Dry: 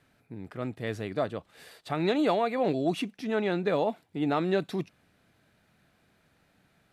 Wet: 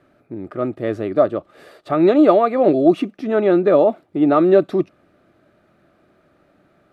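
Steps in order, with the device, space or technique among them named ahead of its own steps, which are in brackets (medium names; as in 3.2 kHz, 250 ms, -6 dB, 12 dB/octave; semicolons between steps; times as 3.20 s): inside a helmet (treble shelf 3.6 kHz -9 dB; small resonant body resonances 350/580/1200 Hz, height 13 dB, ringing for 25 ms); trim +4 dB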